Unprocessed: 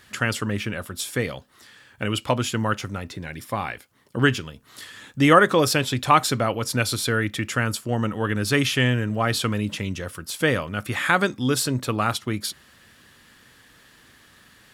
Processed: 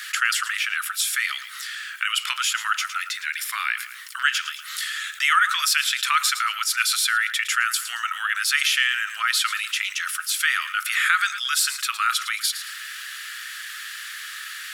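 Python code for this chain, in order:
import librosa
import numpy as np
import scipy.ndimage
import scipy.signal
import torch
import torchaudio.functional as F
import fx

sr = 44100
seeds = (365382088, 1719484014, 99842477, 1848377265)

y = scipy.signal.sosfilt(scipy.signal.cheby1(5, 1.0, 1300.0, 'highpass', fs=sr, output='sos'), x)
y = fx.echo_feedback(y, sr, ms=111, feedback_pct=26, wet_db=-20)
y = fx.env_flatten(y, sr, amount_pct=50)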